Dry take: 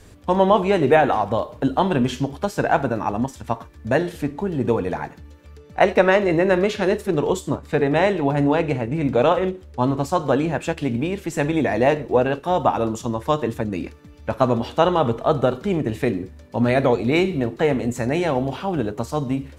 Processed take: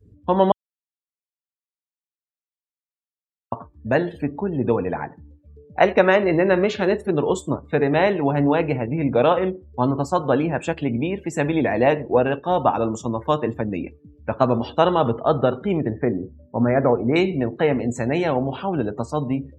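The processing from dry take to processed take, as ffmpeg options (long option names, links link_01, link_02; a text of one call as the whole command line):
ffmpeg -i in.wav -filter_complex "[0:a]asettb=1/sr,asplit=3[link_01][link_02][link_03];[link_01]atrim=end=15.894[link_04];[link_02]atrim=start=15.89:end=17.16,asetpts=PTS-STARTPTS,afade=type=in:duration=0.004:curve=qsin,afade=type=out:start_time=1.266:duration=0.004:curve=qsin,lowpass=frequency=1800:width=0.5412,lowpass=frequency=1800:width=1.3066[link_05];[link_03]atrim=start=17.156[link_06];[link_04][link_05]acrossfade=duration=0.004:curve1=hsin:curve2=qsin[link_07];[link_07][link_06]acrossfade=duration=0.004:curve1=qsin:curve2=hsin,asplit=3[link_08][link_09][link_10];[link_08]atrim=end=0.52,asetpts=PTS-STARTPTS,afade=type=out:start_time=0.516:duration=0.004:curve=hsin[link_11];[link_09]atrim=start=0.52:end=3.52,asetpts=PTS-STARTPTS,volume=0[link_12];[link_10]atrim=start=3.52,asetpts=PTS-STARTPTS,afade=type=in:duration=0.004:curve=hsin[link_13];[link_11][link_12][link_13]concat=n=3:v=0:a=1,afftdn=noise_reduction=33:noise_floor=-40,highpass=76" out.wav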